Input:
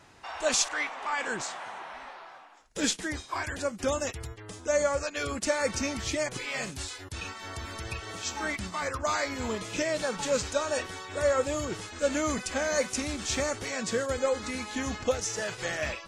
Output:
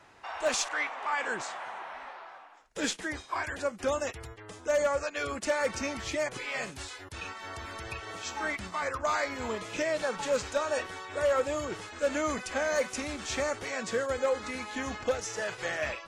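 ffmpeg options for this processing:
ffmpeg -i in.wav -filter_complex "[0:a]acrossover=split=370|2900[link_01][link_02][link_03];[link_02]acontrast=69[link_04];[link_01][link_04][link_03]amix=inputs=3:normalize=0,asoftclip=type=hard:threshold=-15dB,volume=-6dB" out.wav

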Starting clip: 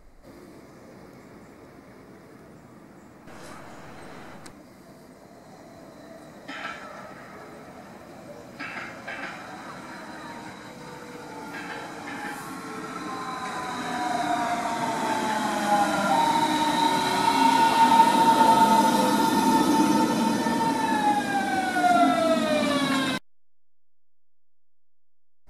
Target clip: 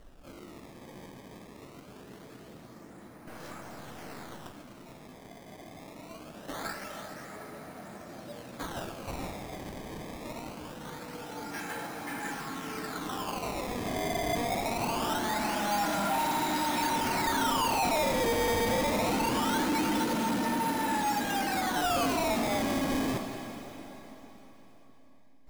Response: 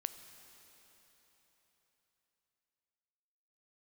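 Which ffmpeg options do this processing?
-filter_complex "[0:a]acrusher=samples=18:mix=1:aa=0.000001:lfo=1:lforange=28.8:lforate=0.23[link_01];[1:a]atrim=start_sample=2205[link_02];[link_01][link_02]afir=irnorm=-1:irlink=0,asoftclip=type=tanh:threshold=-25.5dB"

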